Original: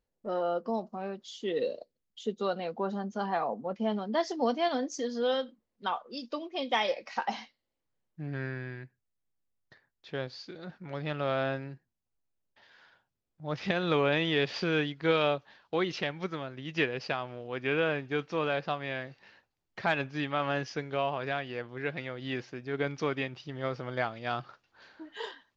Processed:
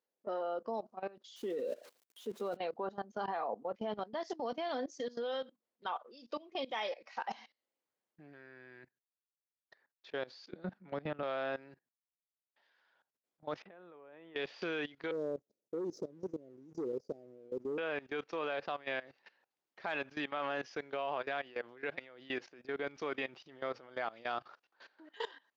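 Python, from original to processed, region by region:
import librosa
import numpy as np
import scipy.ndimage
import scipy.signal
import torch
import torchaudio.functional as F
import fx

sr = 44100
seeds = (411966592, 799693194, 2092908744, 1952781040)

y = fx.chain(x, sr, fx.crossing_spikes(level_db=-30.5),
    fx.highpass(hz=140.0, slope=6),
    fx.tilt_eq(slope=-4.0), at=(1.36, 2.57))
y = fx.chain(y, sr, fx.lowpass(hz=1400.0, slope=6),
    fx.peak_eq(hz=190.0, db=14.0, octaves=0.71),
    fx.band_squash(depth_pct=70), at=(10.52, 11.23))
y = fx.chain(y, sr, fx.lowpass(hz=1400.0, slope=12),
    fx.level_steps(step_db=22), at=(13.62, 14.36))
y = fx.chain(y, sr, fx.cheby2_bandstop(low_hz=1100.0, high_hz=3000.0, order=4, stop_db=60),
    fx.leveller(passes=1), at=(15.11, 17.78))
y = scipy.signal.sosfilt(scipy.signal.butter(2, 340.0, 'highpass', fs=sr, output='sos'), y)
y = fx.high_shelf(y, sr, hz=3400.0, db=-4.0)
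y = fx.level_steps(y, sr, step_db=19)
y = y * librosa.db_to_amplitude(1.5)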